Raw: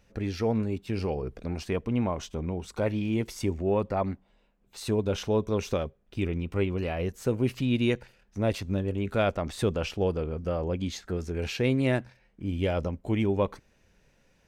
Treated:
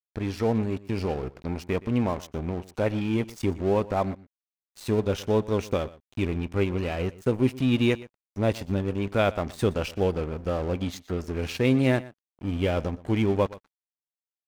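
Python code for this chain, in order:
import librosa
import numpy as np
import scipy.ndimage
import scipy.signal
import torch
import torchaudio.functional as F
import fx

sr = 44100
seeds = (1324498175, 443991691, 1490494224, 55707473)

y = fx.comb_fb(x, sr, f0_hz=260.0, decay_s=0.23, harmonics='odd', damping=0.0, mix_pct=40)
y = np.sign(y) * np.maximum(np.abs(y) - 10.0 ** (-45.5 / 20.0), 0.0)
y = y + 10.0 ** (-19.5 / 20.0) * np.pad(y, (int(120 * sr / 1000.0), 0))[:len(y)]
y = F.gain(torch.from_numpy(y), 7.5).numpy()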